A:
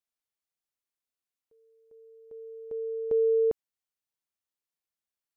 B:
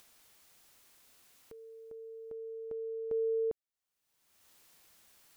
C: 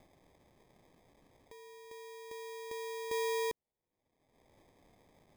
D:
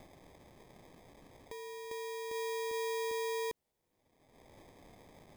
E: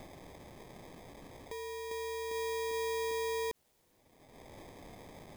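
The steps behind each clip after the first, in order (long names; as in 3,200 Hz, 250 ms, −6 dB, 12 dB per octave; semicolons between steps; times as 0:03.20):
upward compression, threshold −27 dBFS; level −8 dB
decimation without filtering 31×; level −2.5 dB
brickwall limiter −41 dBFS, peak gain reduction 11.5 dB; level +8 dB
mu-law and A-law mismatch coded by mu; level −1 dB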